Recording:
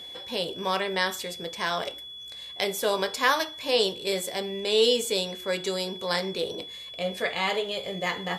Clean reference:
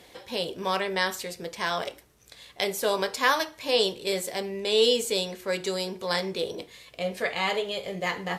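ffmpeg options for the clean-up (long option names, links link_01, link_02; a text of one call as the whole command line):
ffmpeg -i in.wav -af "bandreject=frequency=3400:width=30" out.wav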